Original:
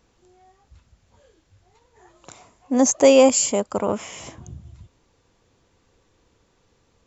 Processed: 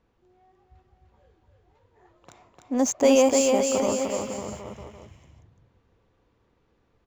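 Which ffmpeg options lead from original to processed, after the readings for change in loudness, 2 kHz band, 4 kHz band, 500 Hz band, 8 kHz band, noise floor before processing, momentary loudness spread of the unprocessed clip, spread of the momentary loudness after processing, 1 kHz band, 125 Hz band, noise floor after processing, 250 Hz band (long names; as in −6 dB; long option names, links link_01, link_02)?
−5.0 dB, −3.5 dB, −3.5 dB, −3.5 dB, can't be measured, −64 dBFS, 15 LU, 18 LU, −3.0 dB, −3.5 dB, −68 dBFS, −3.0 dB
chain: -af "adynamicsmooth=sensitivity=7:basefreq=3100,aecho=1:1:300|555|771.8|956|1113:0.631|0.398|0.251|0.158|0.1,volume=-5.5dB"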